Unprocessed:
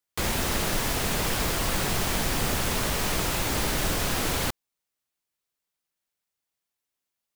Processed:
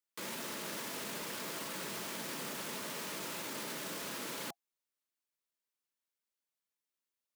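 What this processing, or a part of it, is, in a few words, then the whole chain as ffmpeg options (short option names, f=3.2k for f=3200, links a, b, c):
PA system with an anti-feedback notch: -af "highpass=f=180:w=0.5412,highpass=f=180:w=1.3066,asuperstop=centerf=750:order=8:qfactor=7.5,alimiter=level_in=1dB:limit=-24dB:level=0:latency=1:release=12,volume=-1dB,volume=-7.5dB"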